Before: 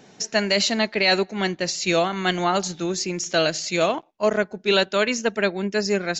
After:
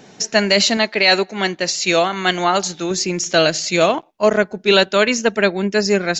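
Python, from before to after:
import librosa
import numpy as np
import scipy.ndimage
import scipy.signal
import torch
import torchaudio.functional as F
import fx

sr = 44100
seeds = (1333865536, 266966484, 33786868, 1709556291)

y = fx.low_shelf(x, sr, hz=250.0, db=-8.5, at=(0.77, 2.91))
y = y * librosa.db_to_amplitude(6.0)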